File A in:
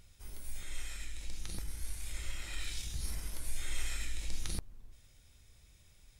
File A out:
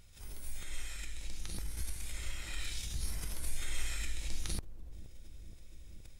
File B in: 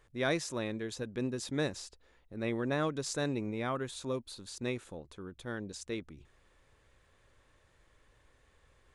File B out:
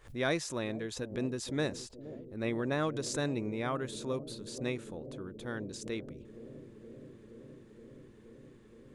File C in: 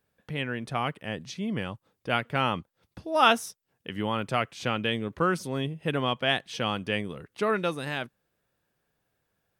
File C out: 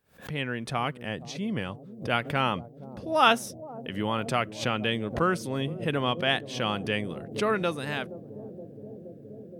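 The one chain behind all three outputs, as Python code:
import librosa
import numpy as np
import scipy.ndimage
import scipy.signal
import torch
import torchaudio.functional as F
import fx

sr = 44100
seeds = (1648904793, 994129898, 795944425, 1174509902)

y = fx.echo_bbd(x, sr, ms=471, stages=2048, feedback_pct=85, wet_db=-14.5)
y = fx.pre_swell(y, sr, db_per_s=150.0)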